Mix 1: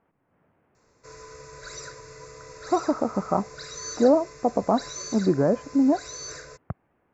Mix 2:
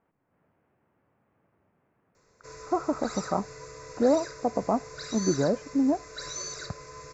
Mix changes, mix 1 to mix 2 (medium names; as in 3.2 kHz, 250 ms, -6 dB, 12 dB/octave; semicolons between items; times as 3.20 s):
speech -4.0 dB; background: entry +1.40 s